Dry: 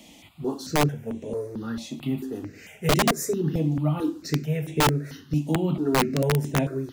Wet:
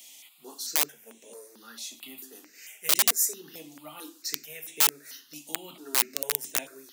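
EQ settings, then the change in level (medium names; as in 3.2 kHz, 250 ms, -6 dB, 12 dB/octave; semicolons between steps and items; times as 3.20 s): high-pass 190 Hz 24 dB/octave; differentiator; +6.5 dB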